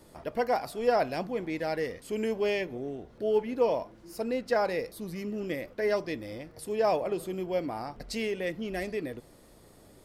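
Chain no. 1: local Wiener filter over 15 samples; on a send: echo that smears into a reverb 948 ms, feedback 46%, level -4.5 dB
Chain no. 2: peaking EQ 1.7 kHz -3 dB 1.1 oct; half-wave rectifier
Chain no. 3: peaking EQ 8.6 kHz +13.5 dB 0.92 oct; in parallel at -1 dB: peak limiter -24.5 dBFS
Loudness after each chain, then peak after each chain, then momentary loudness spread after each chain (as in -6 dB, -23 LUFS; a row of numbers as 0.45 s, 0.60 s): -30.5 LUFS, -37.0 LUFS, -27.0 LUFS; -14.0 dBFS, -14.5 dBFS, -11.5 dBFS; 9 LU, 10 LU, 10 LU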